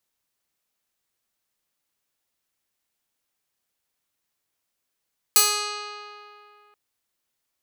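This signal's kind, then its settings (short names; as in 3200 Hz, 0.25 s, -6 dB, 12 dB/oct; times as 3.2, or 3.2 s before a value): plucked string G#4, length 1.38 s, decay 2.67 s, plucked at 0.24, bright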